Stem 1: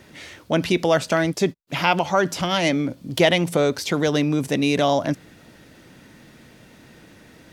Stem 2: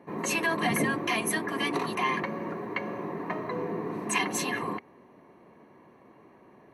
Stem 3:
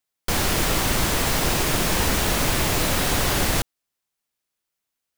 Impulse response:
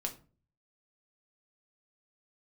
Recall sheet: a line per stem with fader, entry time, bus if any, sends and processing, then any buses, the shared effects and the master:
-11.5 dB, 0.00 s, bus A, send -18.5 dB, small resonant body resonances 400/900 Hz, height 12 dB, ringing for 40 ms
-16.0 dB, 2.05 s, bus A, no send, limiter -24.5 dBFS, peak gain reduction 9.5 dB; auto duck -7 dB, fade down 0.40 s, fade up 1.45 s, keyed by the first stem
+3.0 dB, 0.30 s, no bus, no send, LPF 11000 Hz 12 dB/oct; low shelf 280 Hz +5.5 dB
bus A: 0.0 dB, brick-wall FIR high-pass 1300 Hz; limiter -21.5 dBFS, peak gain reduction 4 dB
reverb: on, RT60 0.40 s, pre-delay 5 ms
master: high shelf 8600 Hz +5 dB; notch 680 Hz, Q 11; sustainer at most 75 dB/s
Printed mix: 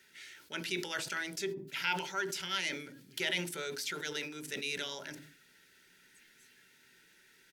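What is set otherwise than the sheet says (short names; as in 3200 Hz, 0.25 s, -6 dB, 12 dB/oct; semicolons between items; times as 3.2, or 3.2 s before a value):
stem 2 -16.0 dB -> -23.5 dB; stem 3: muted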